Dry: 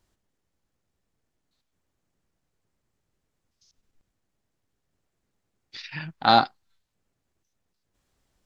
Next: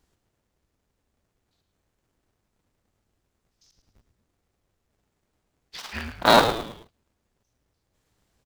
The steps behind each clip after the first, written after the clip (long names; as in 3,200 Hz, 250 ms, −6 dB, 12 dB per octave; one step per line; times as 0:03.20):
sub-harmonics by changed cycles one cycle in 2, inverted
on a send: echo with shifted repeats 108 ms, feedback 40%, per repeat −130 Hz, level −9 dB
on the sum: level +1.5 dB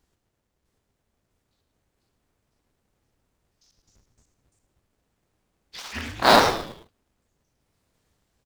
delay with pitch and tempo change per echo 655 ms, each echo +2 semitones, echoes 3
level −1.5 dB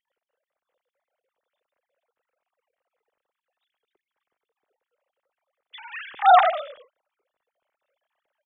three sine waves on the formant tracks
low-shelf EQ 260 Hz +11.5 dB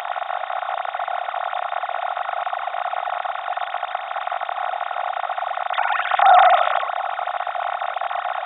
compressor on every frequency bin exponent 0.2
high-pass filter 440 Hz 12 dB per octave
level −1 dB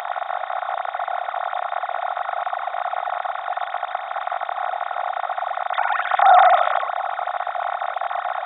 parametric band 2,800 Hz −9.5 dB 0.41 octaves